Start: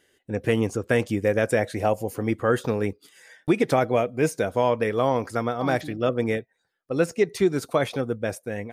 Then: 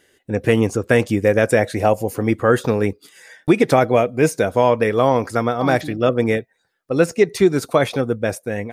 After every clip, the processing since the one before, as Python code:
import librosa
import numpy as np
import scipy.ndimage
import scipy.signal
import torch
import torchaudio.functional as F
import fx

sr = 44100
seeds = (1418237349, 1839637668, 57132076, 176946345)

y = fx.notch(x, sr, hz=3100.0, q=26.0)
y = F.gain(torch.from_numpy(y), 6.5).numpy()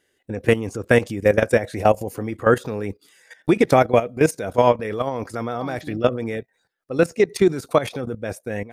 y = fx.level_steps(x, sr, step_db=14)
y = F.gain(torch.from_numpy(y), 1.5).numpy()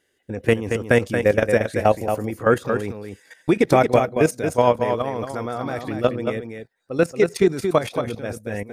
y = x + 10.0 ** (-6.5 / 20.0) * np.pad(x, (int(228 * sr / 1000.0), 0))[:len(x)]
y = F.gain(torch.from_numpy(y), -1.0).numpy()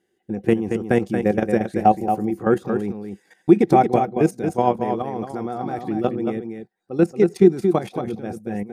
y = fx.small_body(x, sr, hz=(200.0, 340.0, 750.0), ring_ms=50, db=16)
y = F.gain(torch.from_numpy(y), -8.5).numpy()